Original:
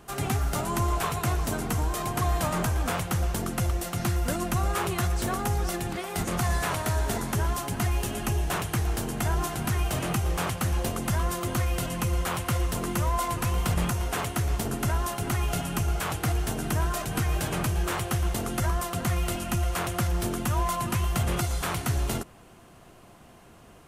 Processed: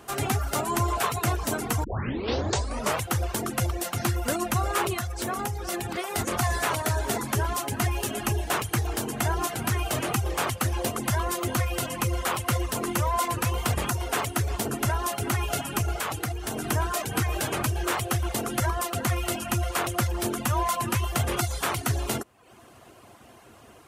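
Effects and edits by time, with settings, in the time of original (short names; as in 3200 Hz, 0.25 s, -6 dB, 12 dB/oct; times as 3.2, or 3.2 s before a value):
1.84 tape start 1.21 s
4.93–5.99 compressor, threshold -27 dBFS
15.98–16.67 compressor, threshold -27 dBFS
whole clip: reverb removal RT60 0.64 s; HPF 82 Hz 12 dB/oct; bell 170 Hz -14.5 dB 0.31 oct; gain +4 dB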